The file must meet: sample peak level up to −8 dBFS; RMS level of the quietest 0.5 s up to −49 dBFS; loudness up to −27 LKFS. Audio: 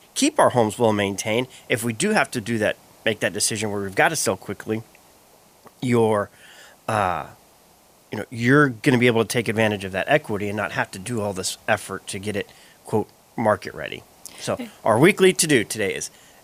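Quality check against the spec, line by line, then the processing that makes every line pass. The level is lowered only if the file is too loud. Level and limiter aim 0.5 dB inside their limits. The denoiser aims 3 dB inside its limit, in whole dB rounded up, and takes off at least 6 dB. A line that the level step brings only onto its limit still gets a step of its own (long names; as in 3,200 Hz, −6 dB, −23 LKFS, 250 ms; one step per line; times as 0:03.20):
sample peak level −3.5 dBFS: out of spec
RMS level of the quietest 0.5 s −54 dBFS: in spec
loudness −22.0 LKFS: out of spec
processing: level −5.5 dB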